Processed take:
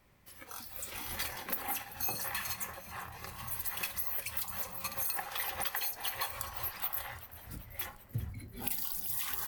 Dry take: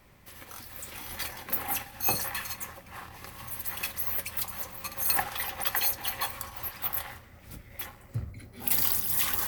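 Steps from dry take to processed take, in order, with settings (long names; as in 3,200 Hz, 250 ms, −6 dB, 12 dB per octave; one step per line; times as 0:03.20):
downward compressor 16 to 1, threshold −31 dBFS, peak gain reduction 12 dB
noise reduction from a noise print of the clip's start 8 dB
echo with shifted repeats 388 ms, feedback 62%, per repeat −72 Hz, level −16 dB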